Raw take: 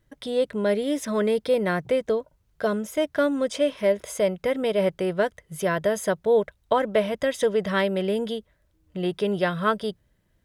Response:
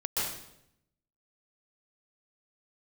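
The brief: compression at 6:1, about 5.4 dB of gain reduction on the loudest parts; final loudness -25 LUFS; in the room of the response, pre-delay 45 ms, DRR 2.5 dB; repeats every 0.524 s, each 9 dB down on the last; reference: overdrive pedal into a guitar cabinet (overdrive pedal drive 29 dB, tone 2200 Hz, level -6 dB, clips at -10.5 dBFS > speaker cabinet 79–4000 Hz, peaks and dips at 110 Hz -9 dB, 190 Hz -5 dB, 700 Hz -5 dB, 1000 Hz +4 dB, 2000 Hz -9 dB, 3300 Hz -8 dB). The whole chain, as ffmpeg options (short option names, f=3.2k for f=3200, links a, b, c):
-filter_complex "[0:a]acompressor=threshold=-22dB:ratio=6,aecho=1:1:524|1048|1572|2096:0.355|0.124|0.0435|0.0152,asplit=2[a][b];[1:a]atrim=start_sample=2205,adelay=45[c];[b][c]afir=irnorm=-1:irlink=0,volume=-10dB[d];[a][d]amix=inputs=2:normalize=0,asplit=2[e][f];[f]highpass=f=720:p=1,volume=29dB,asoftclip=type=tanh:threshold=-10.5dB[g];[e][g]amix=inputs=2:normalize=0,lowpass=f=2.2k:p=1,volume=-6dB,highpass=79,equalizer=f=110:t=q:w=4:g=-9,equalizer=f=190:t=q:w=4:g=-5,equalizer=f=700:t=q:w=4:g=-5,equalizer=f=1k:t=q:w=4:g=4,equalizer=f=2k:t=q:w=4:g=-9,equalizer=f=3.3k:t=q:w=4:g=-8,lowpass=f=4k:w=0.5412,lowpass=f=4k:w=1.3066,volume=-5.5dB"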